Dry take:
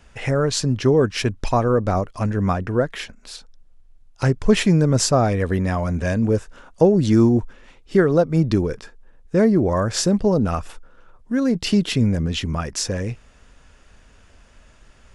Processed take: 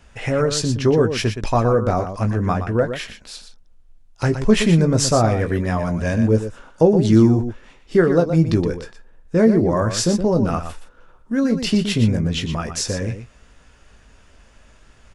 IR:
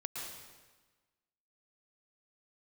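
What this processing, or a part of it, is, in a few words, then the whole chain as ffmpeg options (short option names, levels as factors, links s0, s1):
slapback doubling: -filter_complex "[0:a]asplit=3[s0][s1][s2];[s1]adelay=18,volume=0.398[s3];[s2]adelay=120,volume=0.355[s4];[s0][s3][s4]amix=inputs=3:normalize=0"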